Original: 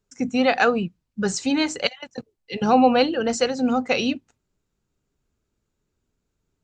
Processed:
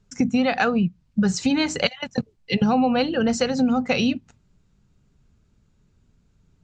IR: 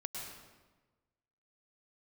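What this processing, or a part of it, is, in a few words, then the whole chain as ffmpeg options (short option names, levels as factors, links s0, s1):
jukebox: -af "lowpass=7000,lowshelf=f=250:t=q:w=1.5:g=7,acompressor=threshold=0.0447:ratio=5,volume=2.66"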